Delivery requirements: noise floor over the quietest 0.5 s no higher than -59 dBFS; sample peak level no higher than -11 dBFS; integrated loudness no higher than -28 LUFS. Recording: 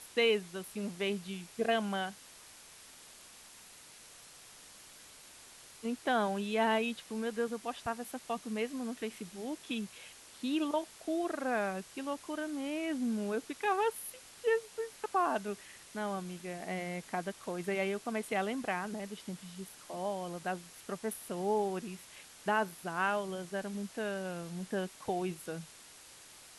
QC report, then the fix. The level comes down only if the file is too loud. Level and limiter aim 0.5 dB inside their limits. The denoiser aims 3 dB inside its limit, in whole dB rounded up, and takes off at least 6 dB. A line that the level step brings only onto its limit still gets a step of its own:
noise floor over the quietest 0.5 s -55 dBFS: fail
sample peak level -18.0 dBFS: OK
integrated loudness -36.0 LUFS: OK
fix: denoiser 7 dB, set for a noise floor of -55 dBFS

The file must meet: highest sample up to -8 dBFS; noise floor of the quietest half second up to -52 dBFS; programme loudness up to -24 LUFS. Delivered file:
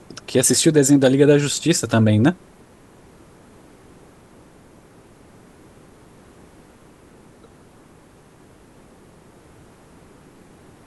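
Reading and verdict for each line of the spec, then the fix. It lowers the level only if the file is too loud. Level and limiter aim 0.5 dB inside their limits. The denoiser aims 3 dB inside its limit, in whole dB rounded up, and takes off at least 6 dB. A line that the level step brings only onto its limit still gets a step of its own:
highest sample -2.0 dBFS: fail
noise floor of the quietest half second -49 dBFS: fail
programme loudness -16.0 LUFS: fail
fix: gain -8.5 dB

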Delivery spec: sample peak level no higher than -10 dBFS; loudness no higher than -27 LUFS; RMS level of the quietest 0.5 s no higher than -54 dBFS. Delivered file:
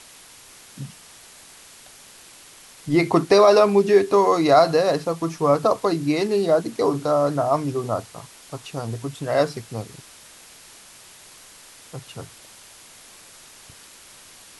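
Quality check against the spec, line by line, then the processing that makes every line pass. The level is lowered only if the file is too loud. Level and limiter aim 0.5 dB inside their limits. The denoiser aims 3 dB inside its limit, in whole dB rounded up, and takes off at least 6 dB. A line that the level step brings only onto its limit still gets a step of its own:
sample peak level -4.5 dBFS: fail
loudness -19.5 LUFS: fail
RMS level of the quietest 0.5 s -47 dBFS: fail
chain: gain -8 dB

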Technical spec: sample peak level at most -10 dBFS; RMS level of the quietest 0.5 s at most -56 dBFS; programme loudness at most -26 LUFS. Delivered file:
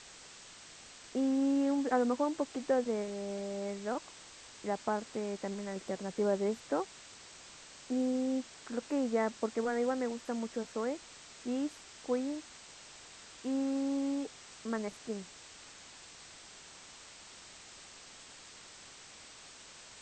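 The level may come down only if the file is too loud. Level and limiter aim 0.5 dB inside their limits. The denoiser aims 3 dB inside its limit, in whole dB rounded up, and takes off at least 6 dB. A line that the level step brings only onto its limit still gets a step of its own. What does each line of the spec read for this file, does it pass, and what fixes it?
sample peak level -18.5 dBFS: OK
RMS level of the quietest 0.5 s -53 dBFS: fail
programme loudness -35.0 LUFS: OK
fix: denoiser 6 dB, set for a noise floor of -53 dBFS

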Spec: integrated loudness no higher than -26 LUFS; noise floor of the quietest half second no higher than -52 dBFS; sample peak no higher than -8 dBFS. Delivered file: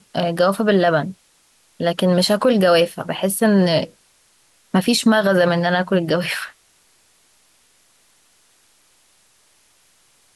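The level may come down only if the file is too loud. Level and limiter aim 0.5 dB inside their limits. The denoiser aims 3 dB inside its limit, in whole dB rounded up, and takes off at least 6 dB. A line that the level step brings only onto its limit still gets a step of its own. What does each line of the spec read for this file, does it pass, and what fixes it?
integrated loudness -17.5 LUFS: fail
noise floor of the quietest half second -58 dBFS: OK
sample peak -6.0 dBFS: fail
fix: gain -9 dB

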